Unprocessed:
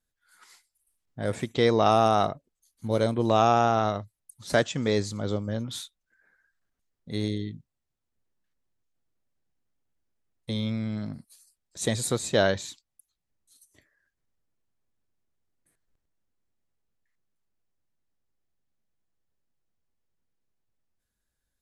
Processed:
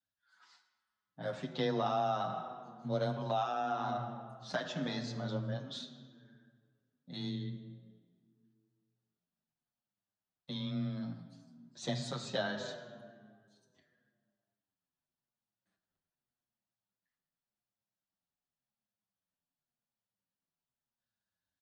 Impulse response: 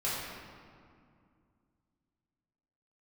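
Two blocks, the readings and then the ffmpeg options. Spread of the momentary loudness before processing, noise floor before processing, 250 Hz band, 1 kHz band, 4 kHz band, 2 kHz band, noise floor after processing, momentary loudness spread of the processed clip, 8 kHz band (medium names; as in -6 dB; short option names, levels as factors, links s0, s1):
17 LU, -83 dBFS, -10.0 dB, -10.5 dB, -8.5 dB, -10.5 dB, under -85 dBFS, 17 LU, -17.0 dB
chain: -filter_complex "[0:a]asplit=2[s0][s1];[1:a]atrim=start_sample=2205,asetrate=57330,aresample=44100[s2];[s1][s2]afir=irnorm=-1:irlink=0,volume=0.299[s3];[s0][s3]amix=inputs=2:normalize=0,afreqshift=16,highpass=150,equalizer=f=310:t=q:w=4:g=-7,equalizer=f=440:t=q:w=4:g=-10,equalizer=f=2200:t=q:w=4:g=-9,lowpass=f=5300:w=0.5412,lowpass=f=5300:w=1.3066,acompressor=threshold=0.0708:ratio=6,asplit=2[s4][s5];[s5]adelay=7.2,afreqshift=-0.89[s6];[s4][s6]amix=inputs=2:normalize=1,volume=0.631"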